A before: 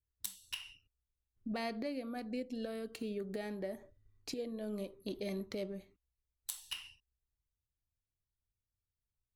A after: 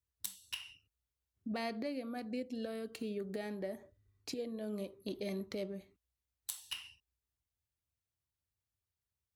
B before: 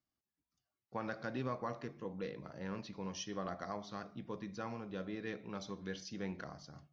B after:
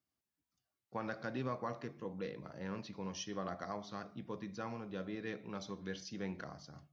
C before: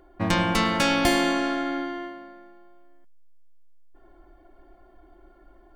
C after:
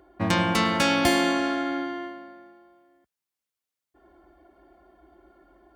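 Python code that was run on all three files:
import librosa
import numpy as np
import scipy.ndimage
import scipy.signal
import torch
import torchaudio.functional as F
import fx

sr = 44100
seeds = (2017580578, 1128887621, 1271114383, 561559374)

y = scipy.signal.sosfilt(scipy.signal.butter(4, 55.0, 'highpass', fs=sr, output='sos'), x)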